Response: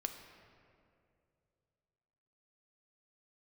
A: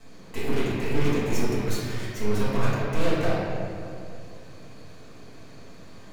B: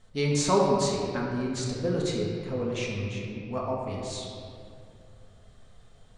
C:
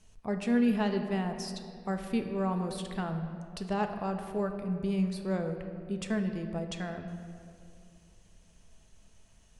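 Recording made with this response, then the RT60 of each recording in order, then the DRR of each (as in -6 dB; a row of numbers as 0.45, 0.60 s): C; 2.5, 2.5, 2.5 s; -9.5, -3.5, 5.5 dB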